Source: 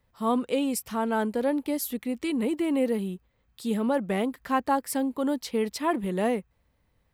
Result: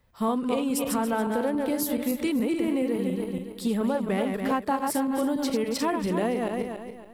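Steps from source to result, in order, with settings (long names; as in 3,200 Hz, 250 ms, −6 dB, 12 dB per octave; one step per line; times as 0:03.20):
feedback delay that plays each chunk backwards 141 ms, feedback 56%, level −5 dB
in parallel at −10.5 dB: slack as between gear wheels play −27.5 dBFS
on the sum: downward compressor, threshold −27 dBFS, peak gain reduction 10.5 dB
level +4 dB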